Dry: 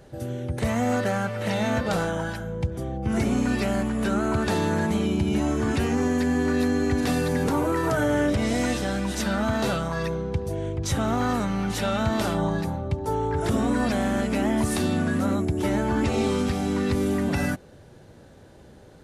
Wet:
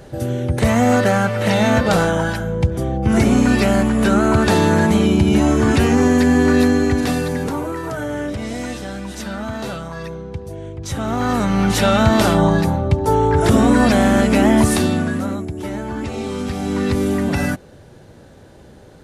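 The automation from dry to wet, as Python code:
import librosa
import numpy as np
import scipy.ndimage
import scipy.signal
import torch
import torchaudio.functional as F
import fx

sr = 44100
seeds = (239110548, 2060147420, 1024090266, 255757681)

y = fx.gain(x, sr, db=fx.line((6.59, 9.5), (7.82, -2.0), (10.77, -2.0), (11.63, 10.5), (14.61, 10.5), (15.5, -2.0), (16.25, -2.0), (16.83, 5.5)))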